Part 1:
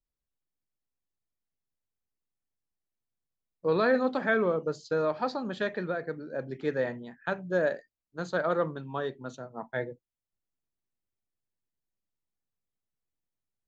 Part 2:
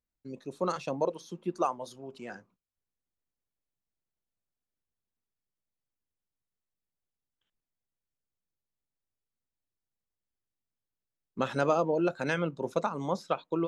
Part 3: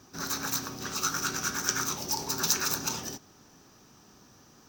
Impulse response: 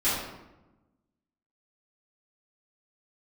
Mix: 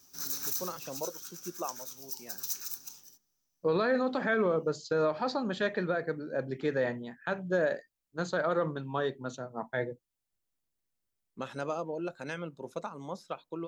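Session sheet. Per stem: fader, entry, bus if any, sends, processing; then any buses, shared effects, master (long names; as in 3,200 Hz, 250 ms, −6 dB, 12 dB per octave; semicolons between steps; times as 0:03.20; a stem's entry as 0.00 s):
+1.5 dB, 0.00 s, no send, no processing
−8.5 dB, 0.00 s, no send, no processing
0:00.64 −1.5 dB → 0:01.14 −14.5 dB → 0:01.97 −14.5 dB → 0:02.58 −3 dB, 0.00 s, no send, first-order pre-emphasis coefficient 0.8; hum removal 71.65 Hz, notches 32; gain into a clipping stage and back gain 13 dB; automatic ducking −23 dB, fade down 1.65 s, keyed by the first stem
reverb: not used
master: high-shelf EQ 5,100 Hz +5 dB; brickwall limiter −19.5 dBFS, peak gain reduction 9.5 dB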